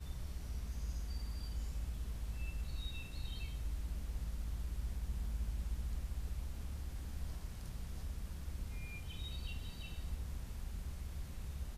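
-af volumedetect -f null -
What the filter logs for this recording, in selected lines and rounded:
mean_volume: -40.9 dB
max_volume: -29.4 dB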